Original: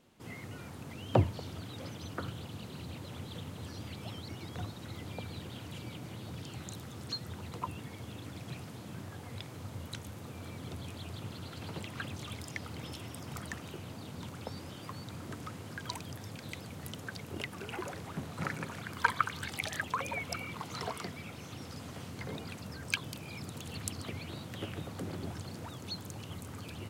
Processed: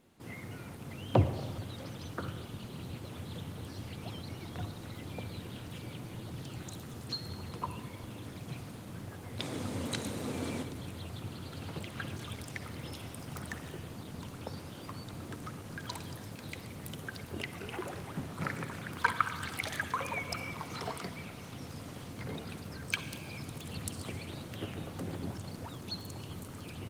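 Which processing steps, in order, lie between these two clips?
9.39–10.63 s: graphic EQ 250/500/1000/2000/4000/8000 Hz +10/+8/+4/+6/+6/+10 dB; in parallel at -11 dB: overload inside the chain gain 19 dB; on the sum: echo from a far wall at 20 m, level -21 dB; on a send at -9.5 dB: reverberation RT60 2.0 s, pre-delay 45 ms; on the sum: trim -1 dB; Opus 24 kbps 48 kHz

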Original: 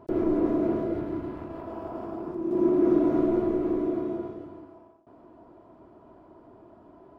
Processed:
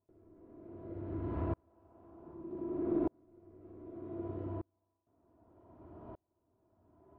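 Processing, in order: peaking EQ 85 Hz +12 dB 0.92 oct; compression 6:1, threshold -29 dBFS, peak gain reduction 12.5 dB; distance through air 260 m; on a send: flutter echo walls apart 10.6 m, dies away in 0.5 s; on the sum: sawtooth tremolo in dB swelling 0.65 Hz, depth 39 dB; trim +3 dB

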